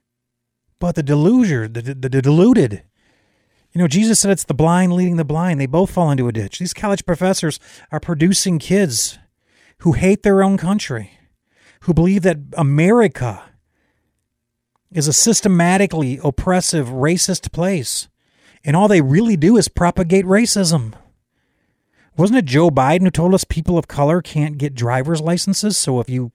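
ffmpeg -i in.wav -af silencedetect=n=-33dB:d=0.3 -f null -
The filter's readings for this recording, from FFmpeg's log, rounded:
silence_start: 0.00
silence_end: 0.81 | silence_duration: 0.81
silence_start: 2.80
silence_end: 3.75 | silence_duration: 0.95
silence_start: 9.15
silence_end: 9.82 | silence_duration: 0.67
silence_start: 11.06
silence_end: 11.84 | silence_duration: 0.78
silence_start: 13.43
silence_end: 14.92 | silence_duration: 1.49
silence_start: 18.04
silence_end: 18.65 | silence_duration: 0.61
silence_start: 20.96
silence_end: 22.18 | silence_duration: 1.22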